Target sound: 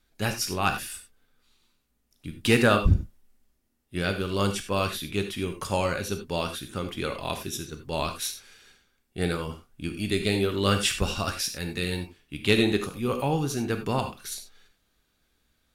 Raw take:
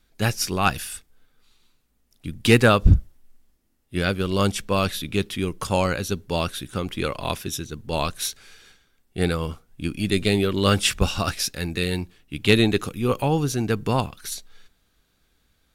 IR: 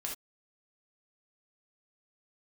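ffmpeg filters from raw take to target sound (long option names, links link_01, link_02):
-filter_complex "[0:a]asplit=2[link_01][link_02];[1:a]atrim=start_sample=2205,asetrate=38367,aresample=44100,lowshelf=frequency=110:gain=-8[link_03];[link_02][link_03]afir=irnorm=-1:irlink=0,volume=-0.5dB[link_04];[link_01][link_04]amix=inputs=2:normalize=0,volume=-9dB"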